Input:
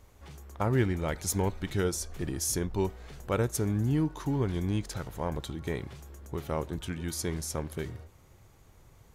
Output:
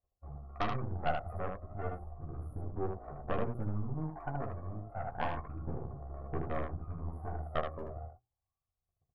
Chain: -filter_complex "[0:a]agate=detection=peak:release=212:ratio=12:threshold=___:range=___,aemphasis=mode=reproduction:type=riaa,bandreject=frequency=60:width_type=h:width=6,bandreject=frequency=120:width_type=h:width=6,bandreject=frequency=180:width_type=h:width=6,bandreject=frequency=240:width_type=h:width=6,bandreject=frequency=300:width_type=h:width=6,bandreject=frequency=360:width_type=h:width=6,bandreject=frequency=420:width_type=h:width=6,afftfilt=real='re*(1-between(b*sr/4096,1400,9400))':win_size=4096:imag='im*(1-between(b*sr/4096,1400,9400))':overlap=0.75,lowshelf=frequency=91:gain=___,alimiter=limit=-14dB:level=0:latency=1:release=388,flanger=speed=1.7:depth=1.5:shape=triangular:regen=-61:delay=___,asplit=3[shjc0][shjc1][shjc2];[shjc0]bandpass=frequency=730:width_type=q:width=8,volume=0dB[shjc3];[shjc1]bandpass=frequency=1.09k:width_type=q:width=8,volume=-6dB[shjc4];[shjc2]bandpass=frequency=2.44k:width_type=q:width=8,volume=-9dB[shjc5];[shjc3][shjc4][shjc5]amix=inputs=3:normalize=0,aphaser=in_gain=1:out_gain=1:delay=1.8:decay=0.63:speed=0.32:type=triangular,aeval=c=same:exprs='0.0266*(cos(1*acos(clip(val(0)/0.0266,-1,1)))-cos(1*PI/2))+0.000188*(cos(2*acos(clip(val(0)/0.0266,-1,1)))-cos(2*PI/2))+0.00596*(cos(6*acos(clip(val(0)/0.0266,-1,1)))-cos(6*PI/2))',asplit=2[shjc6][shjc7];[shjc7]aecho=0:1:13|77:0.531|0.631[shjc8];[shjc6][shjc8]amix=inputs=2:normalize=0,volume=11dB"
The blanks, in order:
-49dB, -35dB, 10.5, 8